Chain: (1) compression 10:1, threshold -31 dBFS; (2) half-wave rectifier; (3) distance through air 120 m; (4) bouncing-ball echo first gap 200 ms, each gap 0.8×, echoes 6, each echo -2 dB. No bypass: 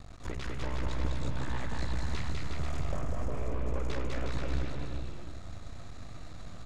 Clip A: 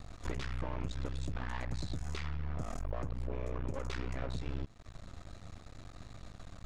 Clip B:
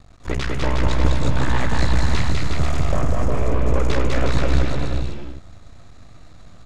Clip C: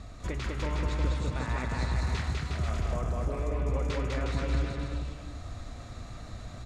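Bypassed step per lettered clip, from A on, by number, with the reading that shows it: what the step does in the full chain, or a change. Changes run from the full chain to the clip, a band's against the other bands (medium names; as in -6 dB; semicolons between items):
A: 4, crest factor change +3.0 dB; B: 1, momentary loudness spread change -6 LU; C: 2, loudness change +5.0 LU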